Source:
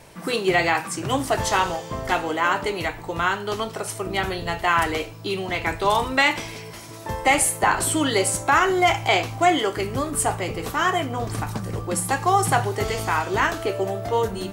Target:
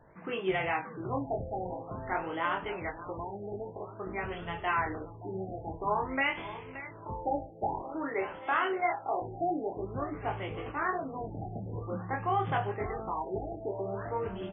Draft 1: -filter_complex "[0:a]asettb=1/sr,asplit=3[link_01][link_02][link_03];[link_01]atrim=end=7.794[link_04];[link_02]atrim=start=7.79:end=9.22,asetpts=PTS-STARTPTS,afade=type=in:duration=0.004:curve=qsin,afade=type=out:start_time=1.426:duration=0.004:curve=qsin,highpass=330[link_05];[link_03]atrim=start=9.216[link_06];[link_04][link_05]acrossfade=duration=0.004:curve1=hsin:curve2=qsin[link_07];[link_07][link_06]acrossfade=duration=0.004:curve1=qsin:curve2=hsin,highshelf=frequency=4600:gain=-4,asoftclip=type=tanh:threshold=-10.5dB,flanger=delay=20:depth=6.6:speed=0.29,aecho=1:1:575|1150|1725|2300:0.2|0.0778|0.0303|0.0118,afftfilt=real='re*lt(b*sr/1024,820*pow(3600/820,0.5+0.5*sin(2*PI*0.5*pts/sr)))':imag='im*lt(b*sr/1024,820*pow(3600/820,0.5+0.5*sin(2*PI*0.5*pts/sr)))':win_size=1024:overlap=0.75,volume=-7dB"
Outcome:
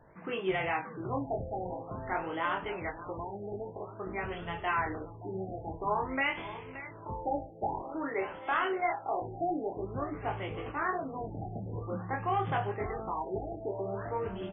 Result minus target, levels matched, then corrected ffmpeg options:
soft clipping: distortion +15 dB
-filter_complex "[0:a]asettb=1/sr,asplit=3[link_01][link_02][link_03];[link_01]atrim=end=7.794[link_04];[link_02]atrim=start=7.79:end=9.22,asetpts=PTS-STARTPTS,afade=type=in:duration=0.004:curve=qsin,afade=type=out:start_time=1.426:duration=0.004:curve=qsin,highpass=330[link_05];[link_03]atrim=start=9.216[link_06];[link_04][link_05]acrossfade=duration=0.004:curve1=hsin:curve2=qsin[link_07];[link_07][link_06]acrossfade=duration=0.004:curve1=qsin:curve2=hsin,highshelf=frequency=4600:gain=-4,asoftclip=type=tanh:threshold=-2dB,flanger=delay=20:depth=6.6:speed=0.29,aecho=1:1:575|1150|1725|2300:0.2|0.0778|0.0303|0.0118,afftfilt=real='re*lt(b*sr/1024,820*pow(3600/820,0.5+0.5*sin(2*PI*0.5*pts/sr)))':imag='im*lt(b*sr/1024,820*pow(3600/820,0.5+0.5*sin(2*PI*0.5*pts/sr)))':win_size=1024:overlap=0.75,volume=-7dB"

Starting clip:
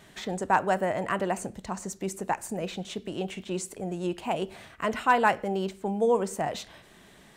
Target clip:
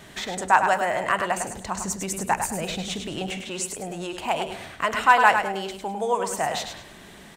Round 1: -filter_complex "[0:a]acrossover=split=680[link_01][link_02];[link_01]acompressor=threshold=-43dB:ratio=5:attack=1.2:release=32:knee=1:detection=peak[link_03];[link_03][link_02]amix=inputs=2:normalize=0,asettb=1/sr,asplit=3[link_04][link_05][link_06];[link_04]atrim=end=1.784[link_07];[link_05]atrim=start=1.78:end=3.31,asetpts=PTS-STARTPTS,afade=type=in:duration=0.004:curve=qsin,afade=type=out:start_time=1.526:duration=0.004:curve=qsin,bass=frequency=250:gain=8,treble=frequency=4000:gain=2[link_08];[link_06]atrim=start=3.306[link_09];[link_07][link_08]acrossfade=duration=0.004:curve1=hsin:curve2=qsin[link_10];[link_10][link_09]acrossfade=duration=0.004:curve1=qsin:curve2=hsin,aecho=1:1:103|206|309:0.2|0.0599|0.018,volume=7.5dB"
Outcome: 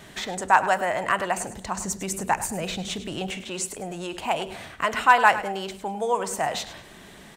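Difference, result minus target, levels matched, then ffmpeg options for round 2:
echo-to-direct −7 dB
-filter_complex "[0:a]acrossover=split=680[link_01][link_02];[link_01]acompressor=threshold=-43dB:ratio=5:attack=1.2:release=32:knee=1:detection=peak[link_03];[link_03][link_02]amix=inputs=2:normalize=0,asettb=1/sr,asplit=3[link_04][link_05][link_06];[link_04]atrim=end=1.784[link_07];[link_05]atrim=start=1.78:end=3.31,asetpts=PTS-STARTPTS,afade=type=in:duration=0.004:curve=qsin,afade=type=out:start_time=1.526:duration=0.004:curve=qsin,bass=frequency=250:gain=8,treble=frequency=4000:gain=2[link_08];[link_06]atrim=start=3.306[link_09];[link_07][link_08]acrossfade=duration=0.004:curve1=hsin:curve2=qsin[link_10];[link_10][link_09]acrossfade=duration=0.004:curve1=qsin:curve2=hsin,aecho=1:1:103|206|309|412:0.447|0.134|0.0402|0.0121,volume=7.5dB"

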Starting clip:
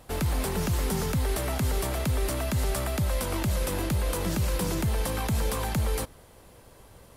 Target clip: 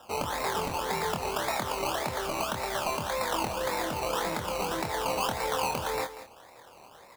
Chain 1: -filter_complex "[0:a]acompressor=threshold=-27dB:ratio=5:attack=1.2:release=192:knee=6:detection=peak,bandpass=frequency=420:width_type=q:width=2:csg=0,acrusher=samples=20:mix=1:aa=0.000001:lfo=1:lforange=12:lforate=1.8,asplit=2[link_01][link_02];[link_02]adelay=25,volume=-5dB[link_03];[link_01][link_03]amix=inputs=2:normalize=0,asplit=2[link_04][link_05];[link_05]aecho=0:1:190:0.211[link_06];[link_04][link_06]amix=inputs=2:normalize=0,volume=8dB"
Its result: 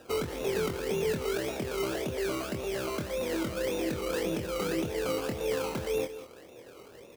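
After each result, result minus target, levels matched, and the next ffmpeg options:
1,000 Hz band −9.5 dB; downward compressor: peak gain reduction +6 dB
-filter_complex "[0:a]acompressor=threshold=-27dB:ratio=5:attack=1.2:release=192:knee=6:detection=peak,bandpass=frequency=910:width_type=q:width=2:csg=0,acrusher=samples=20:mix=1:aa=0.000001:lfo=1:lforange=12:lforate=1.8,asplit=2[link_01][link_02];[link_02]adelay=25,volume=-5dB[link_03];[link_01][link_03]amix=inputs=2:normalize=0,asplit=2[link_04][link_05];[link_05]aecho=0:1:190:0.211[link_06];[link_04][link_06]amix=inputs=2:normalize=0,volume=8dB"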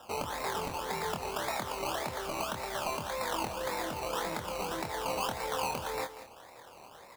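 downward compressor: peak gain reduction +6 dB
-filter_complex "[0:a]bandpass=frequency=910:width_type=q:width=2:csg=0,acrusher=samples=20:mix=1:aa=0.000001:lfo=1:lforange=12:lforate=1.8,asplit=2[link_01][link_02];[link_02]adelay=25,volume=-5dB[link_03];[link_01][link_03]amix=inputs=2:normalize=0,asplit=2[link_04][link_05];[link_05]aecho=0:1:190:0.211[link_06];[link_04][link_06]amix=inputs=2:normalize=0,volume=8dB"

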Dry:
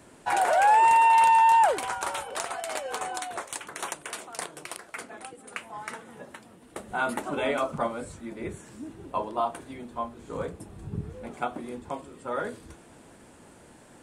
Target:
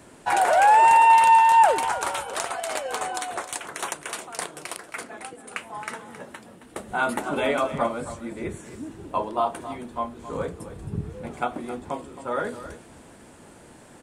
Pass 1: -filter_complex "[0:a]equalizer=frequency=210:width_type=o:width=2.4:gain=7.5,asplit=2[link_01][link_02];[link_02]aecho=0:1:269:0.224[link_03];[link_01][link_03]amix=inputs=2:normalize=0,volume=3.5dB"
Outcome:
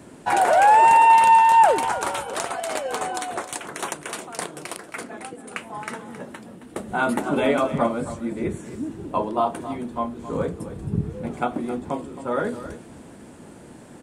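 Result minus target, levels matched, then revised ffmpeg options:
250 Hz band +5.5 dB
-filter_complex "[0:a]asplit=2[link_01][link_02];[link_02]aecho=0:1:269:0.224[link_03];[link_01][link_03]amix=inputs=2:normalize=0,volume=3.5dB"

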